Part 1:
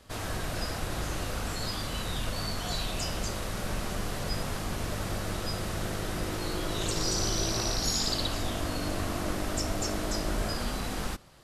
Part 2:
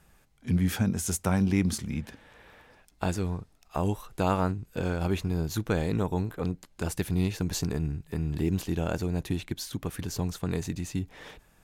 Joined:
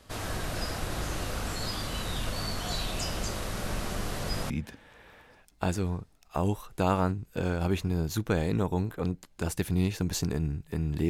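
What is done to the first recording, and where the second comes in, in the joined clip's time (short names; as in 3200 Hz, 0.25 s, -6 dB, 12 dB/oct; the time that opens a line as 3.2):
part 1
4.5 switch to part 2 from 1.9 s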